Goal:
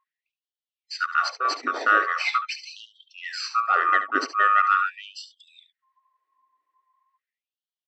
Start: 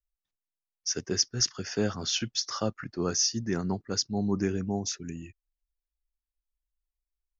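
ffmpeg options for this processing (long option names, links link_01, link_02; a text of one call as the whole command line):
ffmpeg -i in.wav -filter_complex "[0:a]afftfilt=real='real(if(lt(b,960),b+48*(1-2*mod(floor(b/48),2)),b),0)':imag='imag(if(lt(b,960),b+48*(1-2*mod(floor(b/48),2)),b),0)':win_size=2048:overlap=0.75,asplit=2[link_01][link_02];[link_02]acompressor=threshold=-39dB:ratio=6,volume=1.5dB[link_03];[link_01][link_03]amix=inputs=2:normalize=0,equalizer=frequency=1900:width_type=o:width=0.24:gain=13,acontrast=65,aeval=exprs='0.596*(cos(1*acos(clip(val(0)/0.596,-1,1)))-cos(1*PI/2))+0.00531*(cos(2*acos(clip(val(0)/0.596,-1,1)))-cos(2*PI/2))+0.0596*(cos(4*acos(clip(val(0)/0.596,-1,1)))-cos(4*PI/2))':channel_layout=same,lowpass=3700,atempo=0.94,highpass=41,aemphasis=mode=reproduction:type=riaa,asplit=2[link_04][link_05];[link_05]aecho=0:1:71:0.266[link_06];[link_04][link_06]amix=inputs=2:normalize=0,afftfilt=real='re*gte(b*sr/1024,240*pow(2900/240,0.5+0.5*sin(2*PI*0.42*pts/sr)))':imag='im*gte(b*sr/1024,240*pow(2900/240,0.5+0.5*sin(2*PI*0.42*pts/sr)))':win_size=1024:overlap=0.75" out.wav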